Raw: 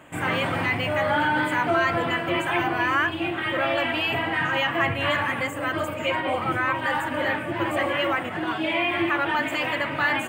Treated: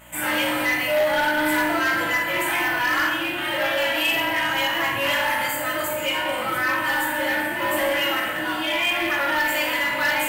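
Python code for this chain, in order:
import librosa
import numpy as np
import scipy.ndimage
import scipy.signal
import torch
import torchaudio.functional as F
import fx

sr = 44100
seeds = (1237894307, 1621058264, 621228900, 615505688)

p1 = fx.rev_fdn(x, sr, rt60_s=0.93, lf_ratio=1.45, hf_ratio=0.8, size_ms=10.0, drr_db=-6.0)
p2 = fx.add_hum(p1, sr, base_hz=60, snr_db=21)
p3 = fx.tilt_eq(p2, sr, slope=3.5)
p4 = 10.0 ** (-11.0 / 20.0) * np.tanh(p3 / 10.0 ** (-11.0 / 20.0))
p5 = fx.quant_float(p4, sr, bits=2)
p6 = p4 + (p5 * 10.0 ** (-6.0 / 20.0))
p7 = fx.peak_eq(p6, sr, hz=12000.0, db=15.0, octaves=0.22)
y = p7 * 10.0 ** (-8.0 / 20.0)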